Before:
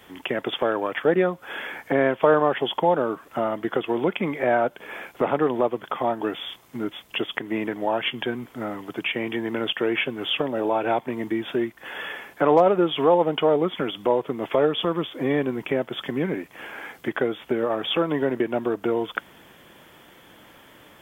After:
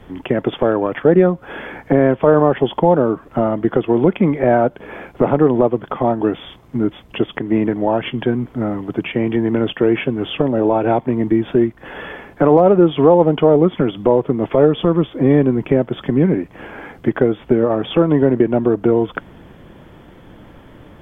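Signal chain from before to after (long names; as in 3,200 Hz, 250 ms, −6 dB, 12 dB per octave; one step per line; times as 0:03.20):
spectral tilt −4 dB per octave
boost into a limiter +5 dB
level −1 dB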